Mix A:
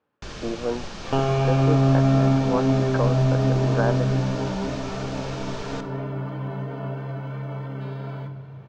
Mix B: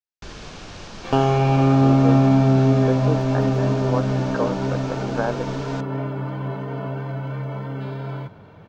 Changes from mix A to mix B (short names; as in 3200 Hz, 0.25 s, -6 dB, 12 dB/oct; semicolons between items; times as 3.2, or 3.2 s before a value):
speech: entry +1.40 s; second sound +5.0 dB; reverb: off